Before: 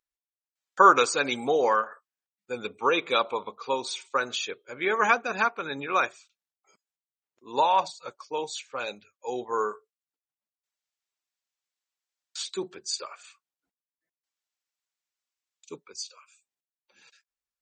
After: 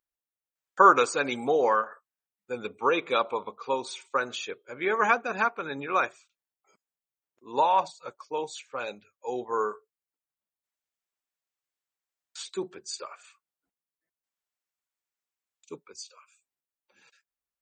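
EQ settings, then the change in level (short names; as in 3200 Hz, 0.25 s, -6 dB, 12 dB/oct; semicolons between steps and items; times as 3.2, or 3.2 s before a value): bell 4700 Hz -6.5 dB 1.7 oct; 0.0 dB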